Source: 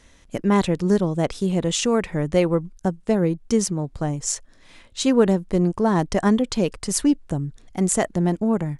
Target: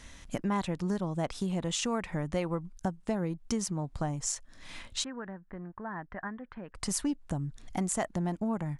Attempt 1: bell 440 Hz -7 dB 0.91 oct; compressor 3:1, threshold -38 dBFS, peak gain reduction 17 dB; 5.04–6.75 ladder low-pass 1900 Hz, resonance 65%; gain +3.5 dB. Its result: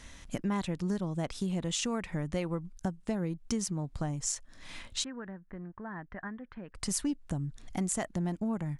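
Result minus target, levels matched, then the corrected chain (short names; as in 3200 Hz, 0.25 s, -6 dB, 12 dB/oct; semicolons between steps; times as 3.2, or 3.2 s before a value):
1000 Hz band -3.5 dB
bell 440 Hz -7 dB 0.91 oct; compressor 3:1, threshold -38 dBFS, peak gain reduction 17 dB; dynamic EQ 870 Hz, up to +5 dB, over -54 dBFS, Q 0.83; 5.04–6.75 ladder low-pass 1900 Hz, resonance 65%; gain +3.5 dB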